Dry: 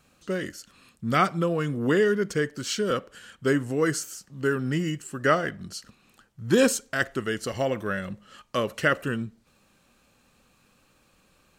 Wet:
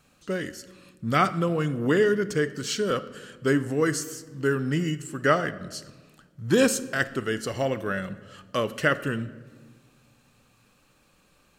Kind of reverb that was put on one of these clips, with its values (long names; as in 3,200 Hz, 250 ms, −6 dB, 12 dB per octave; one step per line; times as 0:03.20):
rectangular room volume 1,400 cubic metres, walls mixed, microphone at 0.38 metres